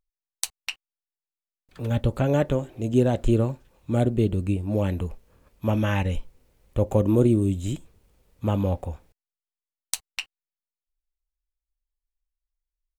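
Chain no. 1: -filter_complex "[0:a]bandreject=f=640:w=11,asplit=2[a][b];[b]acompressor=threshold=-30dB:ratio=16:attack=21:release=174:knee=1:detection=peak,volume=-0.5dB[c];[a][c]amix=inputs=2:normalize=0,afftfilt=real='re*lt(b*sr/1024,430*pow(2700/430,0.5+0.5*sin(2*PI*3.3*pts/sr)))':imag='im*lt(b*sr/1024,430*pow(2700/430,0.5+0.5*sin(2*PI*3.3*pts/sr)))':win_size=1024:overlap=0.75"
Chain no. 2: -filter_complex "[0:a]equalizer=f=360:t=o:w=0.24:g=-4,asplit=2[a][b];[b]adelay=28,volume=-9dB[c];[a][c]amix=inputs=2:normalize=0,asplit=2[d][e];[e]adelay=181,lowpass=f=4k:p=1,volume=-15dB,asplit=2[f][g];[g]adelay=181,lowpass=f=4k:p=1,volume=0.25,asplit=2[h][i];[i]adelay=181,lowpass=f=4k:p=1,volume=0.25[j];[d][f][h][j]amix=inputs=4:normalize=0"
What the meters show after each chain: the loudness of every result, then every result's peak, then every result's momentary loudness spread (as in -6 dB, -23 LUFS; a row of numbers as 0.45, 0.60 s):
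-23.0, -25.5 LUFS; -5.5, -3.5 dBFS; 13, 13 LU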